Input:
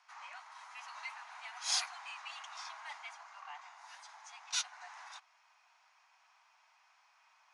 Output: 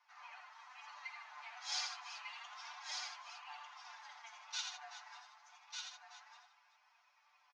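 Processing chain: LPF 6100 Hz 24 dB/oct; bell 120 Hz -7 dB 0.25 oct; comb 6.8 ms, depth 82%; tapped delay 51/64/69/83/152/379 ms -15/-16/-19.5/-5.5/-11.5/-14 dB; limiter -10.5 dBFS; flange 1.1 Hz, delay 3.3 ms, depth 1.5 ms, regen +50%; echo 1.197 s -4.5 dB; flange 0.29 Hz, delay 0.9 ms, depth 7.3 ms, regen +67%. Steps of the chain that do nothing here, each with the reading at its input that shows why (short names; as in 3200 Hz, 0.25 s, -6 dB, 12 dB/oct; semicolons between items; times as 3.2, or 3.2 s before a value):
bell 120 Hz: input band starts at 540 Hz; limiter -10.5 dBFS: input peak -18.0 dBFS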